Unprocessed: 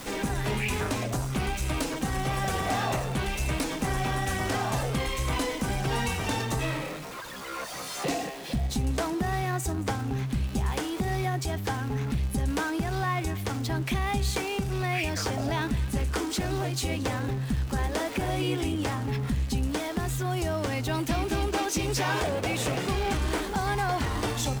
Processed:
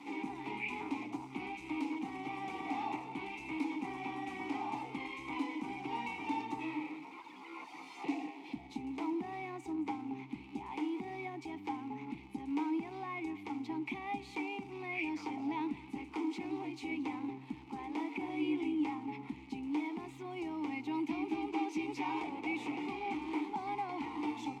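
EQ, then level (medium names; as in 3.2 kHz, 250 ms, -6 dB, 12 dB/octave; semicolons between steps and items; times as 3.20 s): vowel filter u; bass shelf 240 Hz -11.5 dB; +5.0 dB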